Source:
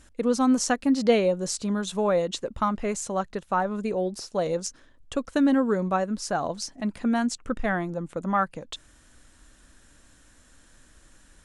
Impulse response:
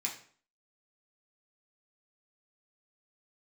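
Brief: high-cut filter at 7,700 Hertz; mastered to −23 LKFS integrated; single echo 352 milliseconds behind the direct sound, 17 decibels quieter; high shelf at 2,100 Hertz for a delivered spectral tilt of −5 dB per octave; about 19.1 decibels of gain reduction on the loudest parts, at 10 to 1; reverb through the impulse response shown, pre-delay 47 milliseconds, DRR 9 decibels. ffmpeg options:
-filter_complex "[0:a]lowpass=7700,highshelf=frequency=2100:gain=-5.5,acompressor=threshold=-35dB:ratio=10,aecho=1:1:352:0.141,asplit=2[link_01][link_02];[1:a]atrim=start_sample=2205,adelay=47[link_03];[link_02][link_03]afir=irnorm=-1:irlink=0,volume=-11dB[link_04];[link_01][link_04]amix=inputs=2:normalize=0,volume=16.5dB"

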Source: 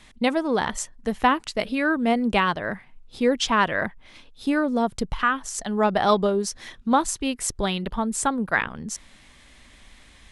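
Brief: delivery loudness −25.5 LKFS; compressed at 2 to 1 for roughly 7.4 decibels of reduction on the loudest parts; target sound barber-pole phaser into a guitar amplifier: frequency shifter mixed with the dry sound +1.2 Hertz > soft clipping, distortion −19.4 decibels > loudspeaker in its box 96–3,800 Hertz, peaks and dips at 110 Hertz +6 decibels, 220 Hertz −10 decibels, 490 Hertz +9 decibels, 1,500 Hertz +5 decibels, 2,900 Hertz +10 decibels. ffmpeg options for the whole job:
ffmpeg -i in.wav -filter_complex "[0:a]acompressor=threshold=-28dB:ratio=2,asplit=2[link_01][link_02];[link_02]afreqshift=1.2[link_03];[link_01][link_03]amix=inputs=2:normalize=1,asoftclip=threshold=-21dB,highpass=96,equalizer=frequency=110:width_type=q:width=4:gain=6,equalizer=frequency=220:width_type=q:width=4:gain=-10,equalizer=frequency=490:width_type=q:width=4:gain=9,equalizer=frequency=1500:width_type=q:width=4:gain=5,equalizer=frequency=2900:width_type=q:width=4:gain=10,lowpass=frequency=3800:width=0.5412,lowpass=frequency=3800:width=1.3066,volume=6.5dB" out.wav

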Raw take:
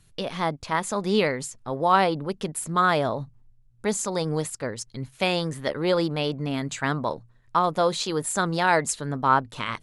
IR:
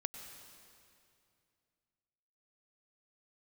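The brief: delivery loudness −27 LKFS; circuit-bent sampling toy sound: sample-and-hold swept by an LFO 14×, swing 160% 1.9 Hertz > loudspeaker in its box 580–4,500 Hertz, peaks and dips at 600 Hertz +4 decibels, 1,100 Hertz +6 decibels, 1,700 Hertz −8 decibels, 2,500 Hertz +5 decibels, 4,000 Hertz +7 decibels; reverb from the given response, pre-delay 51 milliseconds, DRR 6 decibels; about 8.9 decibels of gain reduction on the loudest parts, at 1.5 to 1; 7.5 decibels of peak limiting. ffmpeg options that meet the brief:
-filter_complex "[0:a]acompressor=threshold=-40dB:ratio=1.5,alimiter=limit=-22.5dB:level=0:latency=1,asplit=2[link_01][link_02];[1:a]atrim=start_sample=2205,adelay=51[link_03];[link_02][link_03]afir=irnorm=-1:irlink=0,volume=-5dB[link_04];[link_01][link_04]amix=inputs=2:normalize=0,acrusher=samples=14:mix=1:aa=0.000001:lfo=1:lforange=22.4:lforate=1.9,highpass=580,equalizer=frequency=600:width_type=q:width=4:gain=4,equalizer=frequency=1100:width_type=q:width=4:gain=6,equalizer=frequency=1700:width_type=q:width=4:gain=-8,equalizer=frequency=2500:width_type=q:width=4:gain=5,equalizer=frequency=4000:width_type=q:width=4:gain=7,lowpass=frequency=4500:width=0.5412,lowpass=frequency=4500:width=1.3066,volume=7.5dB"

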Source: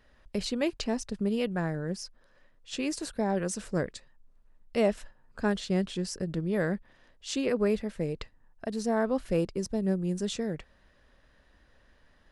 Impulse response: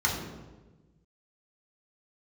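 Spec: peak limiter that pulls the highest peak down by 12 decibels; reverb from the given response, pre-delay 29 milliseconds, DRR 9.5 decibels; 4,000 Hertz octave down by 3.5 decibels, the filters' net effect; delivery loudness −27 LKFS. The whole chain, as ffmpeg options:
-filter_complex "[0:a]equalizer=frequency=4000:width_type=o:gain=-4.5,alimiter=level_in=1dB:limit=-24dB:level=0:latency=1,volume=-1dB,asplit=2[link_01][link_02];[1:a]atrim=start_sample=2205,adelay=29[link_03];[link_02][link_03]afir=irnorm=-1:irlink=0,volume=-21dB[link_04];[link_01][link_04]amix=inputs=2:normalize=0,volume=8dB"

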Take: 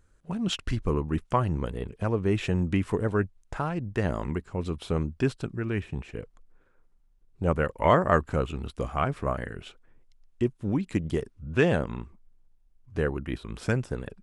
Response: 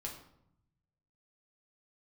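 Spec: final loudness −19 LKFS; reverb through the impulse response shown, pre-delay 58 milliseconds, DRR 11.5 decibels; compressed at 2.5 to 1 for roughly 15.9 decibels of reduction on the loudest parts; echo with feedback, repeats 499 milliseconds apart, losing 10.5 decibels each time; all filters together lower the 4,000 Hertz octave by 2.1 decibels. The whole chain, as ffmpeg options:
-filter_complex "[0:a]equalizer=frequency=4000:width_type=o:gain=-3,acompressor=threshold=-41dB:ratio=2.5,aecho=1:1:499|998|1497:0.299|0.0896|0.0269,asplit=2[link_01][link_02];[1:a]atrim=start_sample=2205,adelay=58[link_03];[link_02][link_03]afir=irnorm=-1:irlink=0,volume=-10dB[link_04];[link_01][link_04]amix=inputs=2:normalize=0,volume=21.5dB"

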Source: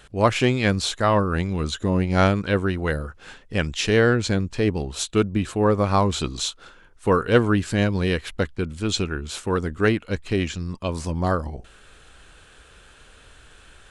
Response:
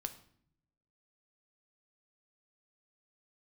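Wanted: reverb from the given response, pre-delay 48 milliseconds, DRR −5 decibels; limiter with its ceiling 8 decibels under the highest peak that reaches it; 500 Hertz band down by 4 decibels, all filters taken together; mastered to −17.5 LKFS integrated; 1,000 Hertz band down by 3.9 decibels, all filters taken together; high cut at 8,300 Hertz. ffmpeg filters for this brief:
-filter_complex "[0:a]lowpass=8300,equalizer=frequency=500:width_type=o:gain=-4,equalizer=frequency=1000:width_type=o:gain=-4,alimiter=limit=-13dB:level=0:latency=1,asplit=2[link_01][link_02];[1:a]atrim=start_sample=2205,adelay=48[link_03];[link_02][link_03]afir=irnorm=-1:irlink=0,volume=6.5dB[link_04];[link_01][link_04]amix=inputs=2:normalize=0,volume=1.5dB"

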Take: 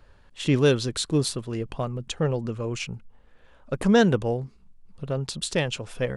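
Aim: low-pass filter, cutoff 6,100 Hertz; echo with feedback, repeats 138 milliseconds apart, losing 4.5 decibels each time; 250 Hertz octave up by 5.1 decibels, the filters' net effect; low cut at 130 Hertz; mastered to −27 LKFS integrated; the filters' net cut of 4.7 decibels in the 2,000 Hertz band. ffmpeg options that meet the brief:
ffmpeg -i in.wav -af "highpass=130,lowpass=6100,equalizer=frequency=250:width_type=o:gain=7,equalizer=frequency=2000:width_type=o:gain=-6.5,aecho=1:1:138|276|414|552|690|828|966|1104|1242:0.596|0.357|0.214|0.129|0.0772|0.0463|0.0278|0.0167|0.01,volume=-5.5dB" out.wav

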